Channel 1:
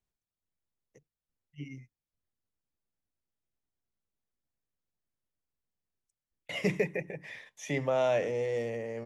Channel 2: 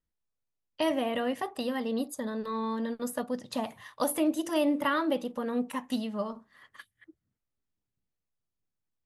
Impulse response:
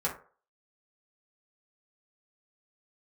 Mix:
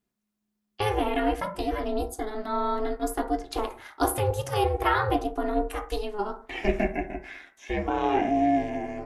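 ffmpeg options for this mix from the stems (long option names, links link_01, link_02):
-filter_complex "[0:a]acrossover=split=3900[link_01][link_02];[link_02]acompressor=threshold=-58dB:ratio=4:attack=1:release=60[link_03];[link_01][link_03]amix=inputs=2:normalize=0,volume=0dB,asplit=3[link_04][link_05][link_06];[link_05]volume=-3dB[link_07];[1:a]volume=1.5dB,asplit=2[link_08][link_09];[link_09]volume=-6dB[link_10];[link_06]apad=whole_len=399242[link_11];[link_08][link_11]sidechaincompress=threshold=-43dB:ratio=8:attack=16:release=900[link_12];[2:a]atrim=start_sample=2205[link_13];[link_07][link_10]amix=inputs=2:normalize=0[link_14];[link_14][link_13]afir=irnorm=-1:irlink=0[link_15];[link_04][link_12][link_15]amix=inputs=3:normalize=0,aeval=exprs='val(0)*sin(2*PI*210*n/s)':channel_layout=same"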